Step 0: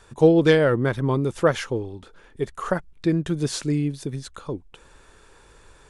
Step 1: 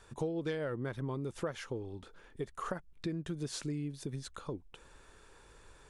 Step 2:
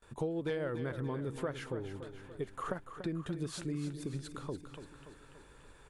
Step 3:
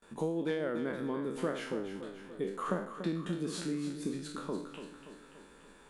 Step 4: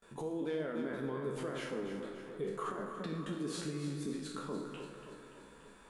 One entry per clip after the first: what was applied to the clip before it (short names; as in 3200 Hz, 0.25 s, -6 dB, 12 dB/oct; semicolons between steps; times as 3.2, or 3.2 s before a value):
compressor 4:1, threshold -29 dBFS, peak gain reduction 16 dB; gain -6.5 dB
gate with hold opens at -50 dBFS; bell 5700 Hz -6.5 dB 0.73 oct; feedback echo 0.288 s, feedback 55%, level -10 dB
spectral trails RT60 0.56 s; resonant low shelf 150 Hz -9 dB, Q 3
limiter -28.5 dBFS, peak gain reduction 10 dB; flange 0.8 Hz, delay 1.5 ms, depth 3.1 ms, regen -60%; reverb RT60 3.0 s, pre-delay 3 ms, DRR 5 dB; gain +2.5 dB